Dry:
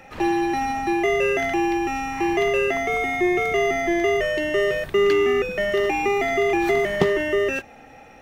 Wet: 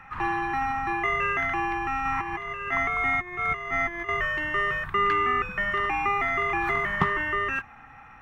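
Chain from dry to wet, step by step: 2.05–4.09 s: compressor with a negative ratio -24 dBFS, ratio -0.5; FFT filter 130 Hz 0 dB, 560 Hz -19 dB, 1.1 kHz +10 dB, 4.7 kHz -15 dB

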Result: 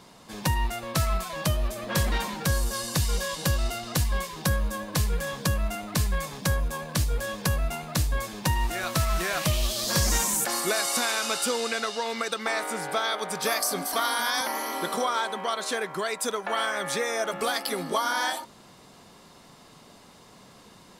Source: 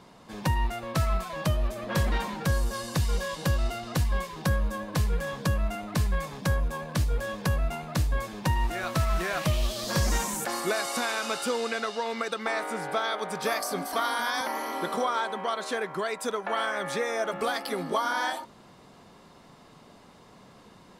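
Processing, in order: treble shelf 3.5 kHz +9.5 dB

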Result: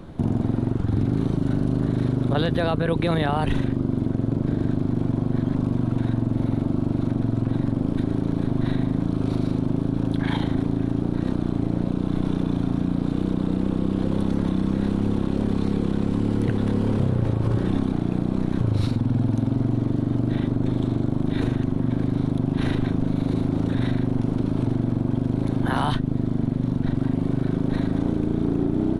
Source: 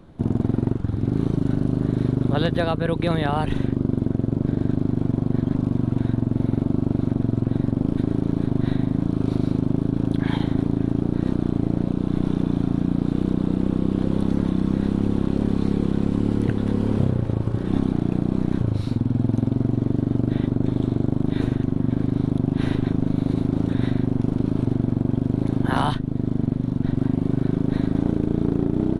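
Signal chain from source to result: peak limiter -20.5 dBFS, peak gain reduction 10.5 dB; trim +7.5 dB

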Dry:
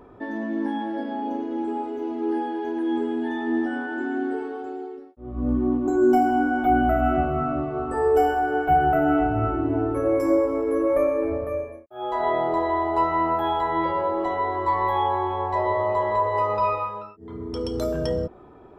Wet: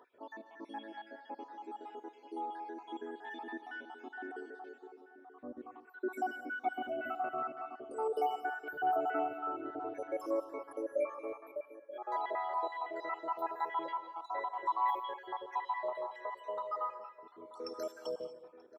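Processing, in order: random holes in the spectrogram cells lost 62%; high-pass 590 Hz 12 dB/octave; 15.89–16.73 s: compression, threshold -29 dBFS, peak gain reduction 8.5 dB; echo from a far wall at 160 m, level -14 dB; gated-style reverb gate 250 ms rising, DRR 11 dB; trim -7.5 dB

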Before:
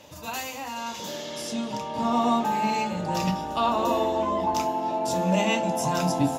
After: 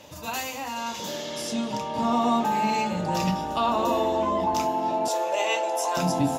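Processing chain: in parallel at -0.5 dB: peak limiter -19 dBFS, peak gain reduction 8 dB; 5.08–5.97 s: on the sum: steep high-pass 380 Hz 36 dB/octave; trim -4 dB

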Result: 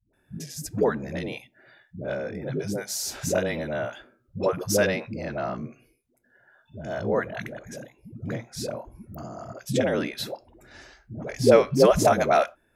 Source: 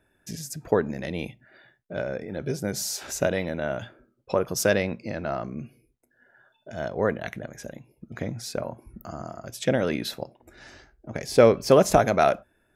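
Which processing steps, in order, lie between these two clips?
8.55–9.26 s: dynamic bell 1.7 kHz, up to -6 dB, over -48 dBFS, Q 0.74; phase dispersion highs, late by 135 ms, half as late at 310 Hz

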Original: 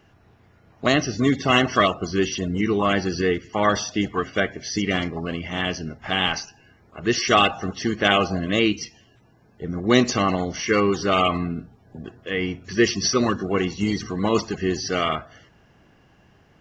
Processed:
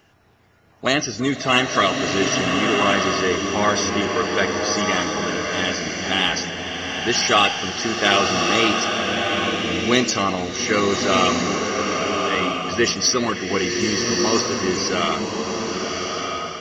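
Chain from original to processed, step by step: treble shelf 4.6 kHz +6.5 dB; in parallel at -10 dB: saturation -15 dBFS, distortion -12 dB; on the sum: bass shelf 280 Hz -6.5 dB; swelling reverb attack 1280 ms, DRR 0.5 dB; trim -1 dB

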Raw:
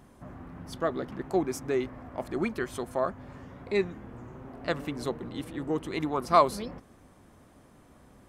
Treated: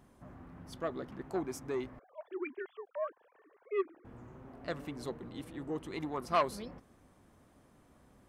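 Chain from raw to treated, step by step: 1.99–4.05 s: formants replaced by sine waves; transformer saturation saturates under 1.1 kHz; trim -7 dB

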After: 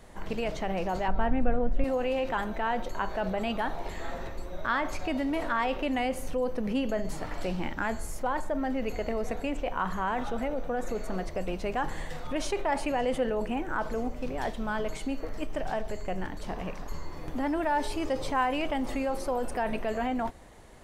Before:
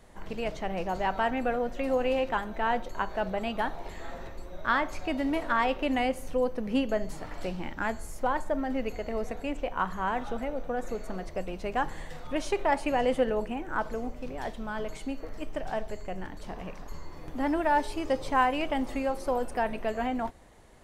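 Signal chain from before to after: 1.08–1.84 s: RIAA curve playback; in parallel at -1 dB: compressor with a negative ratio -33 dBFS, ratio -1; on the sum: trim -4 dB

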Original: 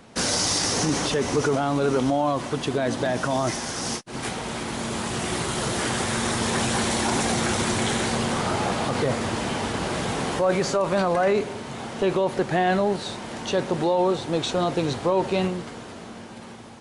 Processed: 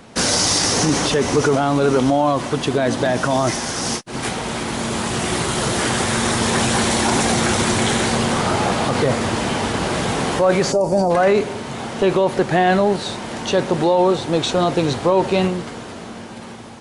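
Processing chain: time-frequency box 10.72–11.10 s, 960–4400 Hz -18 dB; trim +6 dB

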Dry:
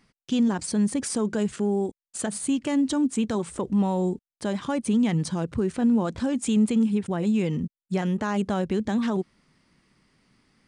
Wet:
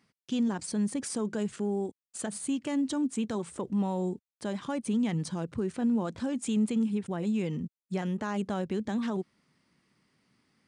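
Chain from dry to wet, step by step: high-pass 90 Hz; trim -6 dB

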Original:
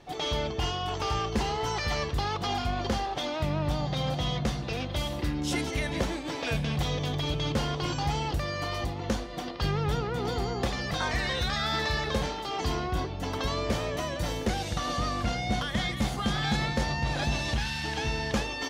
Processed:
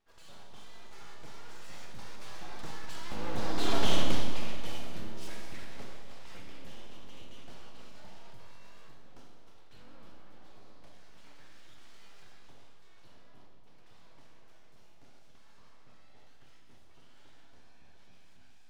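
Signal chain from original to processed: Doppler pass-by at 3.82 s, 31 m/s, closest 6.4 m; full-wave rectifier; Schroeder reverb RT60 1.5 s, combs from 28 ms, DRR 1.5 dB; trim +2 dB

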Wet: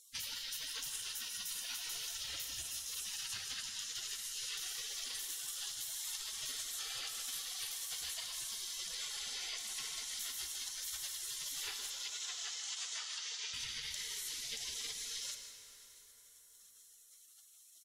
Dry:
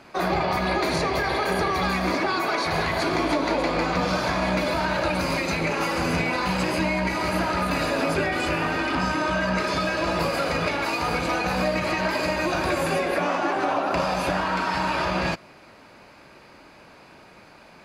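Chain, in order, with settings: band-stop 4.1 kHz; spectral gate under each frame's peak -30 dB weak; 11.90–13.54 s: elliptic band-pass 500–7200 Hz, stop band 40 dB; compression, threshold -51 dBFS, peak gain reduction 11 dB; delay 156 ms -11 dB; plate-style reverb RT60 4.8 s, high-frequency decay 0.55×, DRR 5.5 dB; trim +10.5 dB

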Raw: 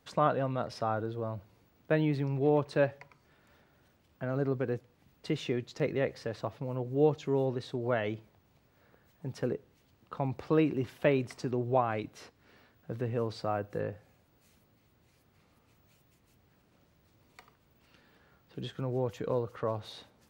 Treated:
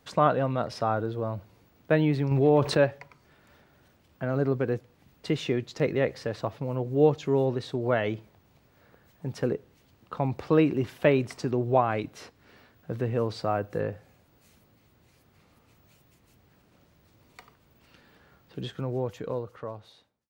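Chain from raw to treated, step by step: fade out at the end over 1.86 s; 2.31–2.77 s: level flattener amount 50%; trim +5 dB

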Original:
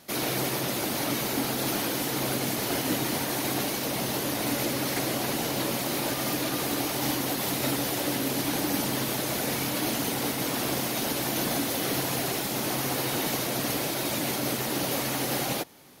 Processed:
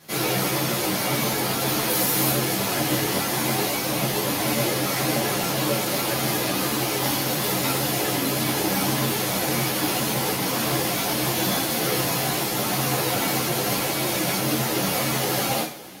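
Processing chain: 1.88–2.31 s: treble shelf 8.6 kHz +9.5 dB; reverberation, pre-delay 3 ms, DRR -3.5 dB; three-phase chorus; trim +3.5 dB

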